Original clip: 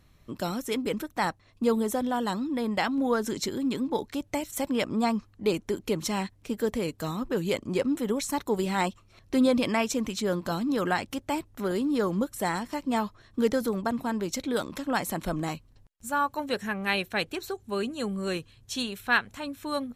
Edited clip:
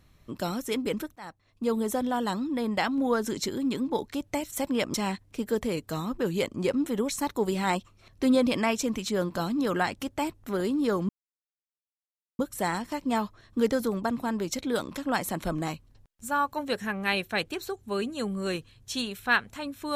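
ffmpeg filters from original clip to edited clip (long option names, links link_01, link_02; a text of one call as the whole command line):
ffmpeg -i in.wav -filter_complex "[0:a]asplit=4[link_01][link_02][link_03][link_04];[link_01]atrim=end=1.16,asetpts=PTS-STARTPTS,afade=type=out:start_time=1.156:duration=0.004:curve=hsin:silence=0.0794328[link_05];[link_02]atrim=start=1.16:end=4.942,asetpts=PTS-STARTPTS,afade=type=in:duration=0.77:silence=0.0794328[link_06];[link_03]atrim=start=6.048:end=12.2,asetpts=PTS-STARTPTS,afade=type=out:start_time=6.148:duration=0.004:curve=hsin,apad=pad_dur=1.3[link_07];[link_04]atrim=start=12.2,asetpts=PTS-STARTPTS,afade=type=in:duration=0.004:curve=hsin[link_08];[link_05][link_06]concat=n=2:v=0:a=1[link_09];[link_07][link_08]concat=n=2:v=0:a=1[link_10];[link_09][link_10]acrossfade=duration=0.004:curve1=hsin:curve2=hsin" out.wav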